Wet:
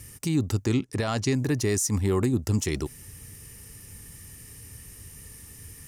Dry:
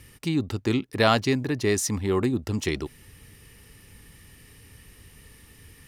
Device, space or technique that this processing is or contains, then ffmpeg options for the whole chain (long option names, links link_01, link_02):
over-bright horn tweeter: -filter_complex "[0:a]highshelf=frequency=5000:width_type=q:width=1.5:gain=8.5,alimiter=limit=-17dB:level=0:latency=1:release=86,equalizer=frequency=100:width_type=o:width=1.6:gain=5.5,asplit=3[link_01][link_02][link_03];[link_01]afade=type=out:start_time=0.65:duration=0.02[link_04];[link_02]lowpass=8600,afade=type=in:start_time=0.65:duration=0.02,afade=type=out:start_time=1.33:duration=0.02[link_05];[link_03]afade=type=in:start_time=1.33:duration=0.02[link_06];[link_04][link_05][link_06]amix=inputs=3:normalize=0"